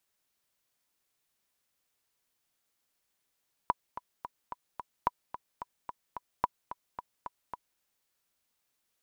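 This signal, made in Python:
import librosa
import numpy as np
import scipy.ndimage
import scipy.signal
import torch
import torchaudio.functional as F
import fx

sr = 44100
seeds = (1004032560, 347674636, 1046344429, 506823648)

y = fx.click_track(sr, bpm=219, beats=5, bars=3, hz=982.0, accent_db=13.0, level_db=-12.0)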